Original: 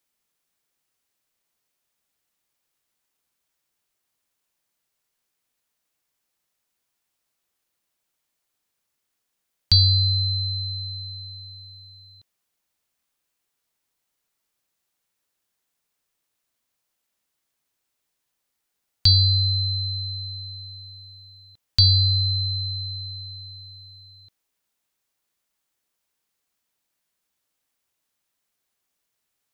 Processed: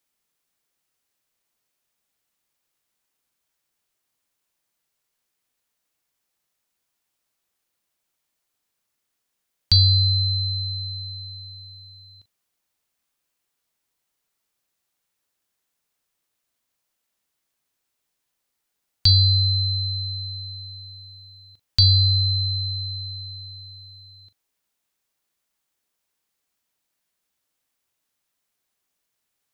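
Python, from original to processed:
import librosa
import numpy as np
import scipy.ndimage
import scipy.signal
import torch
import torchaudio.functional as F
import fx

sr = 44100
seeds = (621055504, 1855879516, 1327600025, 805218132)

y = fx.doubler(x, sr, ms=41.0, db=-14.0)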